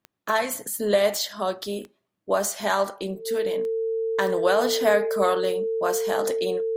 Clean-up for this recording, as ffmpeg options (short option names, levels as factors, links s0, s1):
-af "adeclick=t=4,bandreject=f=450:w=30"